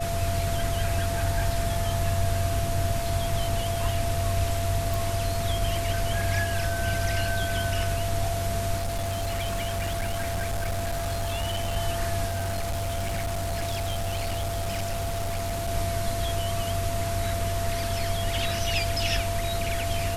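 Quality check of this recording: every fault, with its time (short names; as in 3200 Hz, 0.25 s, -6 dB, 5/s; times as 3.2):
tone 680 Hz -30 dBFS
4.94 pop
8.77–11.77 clipped -24.5 dBFS
12.27–15.69 clipped -25 dBFS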